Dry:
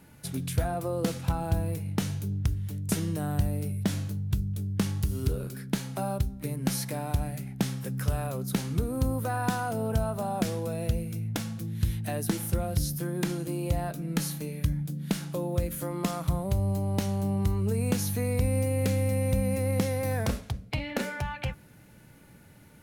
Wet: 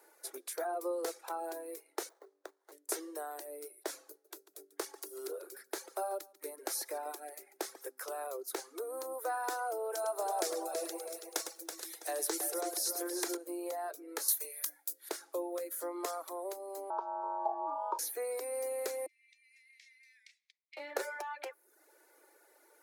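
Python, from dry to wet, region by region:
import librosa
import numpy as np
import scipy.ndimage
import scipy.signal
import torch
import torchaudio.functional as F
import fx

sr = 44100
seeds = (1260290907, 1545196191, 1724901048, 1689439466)

y = fx.chain(x, sr, fx.highpass(hz=500.0, slope=12),
    fx.running_max(window=17), at=(2.09, 2.72))
y = fx.chain(y, sr, fx.notch(hz=1000.0, q=28.0),
    fx.echo_single(ms=143, db=-12.5), at=(4.1, 7.89))
y = fx.chain(y, sr, fx.peak_eq(hz=6400.0, db=7.0, octaves=2.1),
    fx.echo_single(ms=106, db=-7.0),
    fx.echo_crushed(ms=328, feedback_pct=35, bits=9, wet_db=-7.0), at=(9.92, 13.37))
y = fx.chain(y, sr, fx.highpass(hz=410.0, slope=6),
    fx.tilt_eq(slope=4.0), at=(14.28, 15.09))
y = fx.chain(y, sr, fx.lowpass(hz=1300.0, slope=12),
    fx.ring_mod(carrier_hz=740.0),
    fx.fixed_phaser(hz=520.0, stages=6), at=(16.9, 17.99))
y = fx.chain(y, sr, fx.steep_highpass(hz=2000.0, slope=72),
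    fx.spacing_loss(db_at_10k=31), at=(19.06, 20.77))
y = scipy.signal.sosfilt(scipy.signal.butter(12, 340.0, 'highpass', fs=sr, output='sos'), y)
y = fx.dereverb_blind(y, sr, rt60_s=0.66)
y = fx.peak_eq(y, sr, hz=2900.0, db=-12.0, octaves=0.76)
y = y * librosa.db_to_amplitude(-2.0)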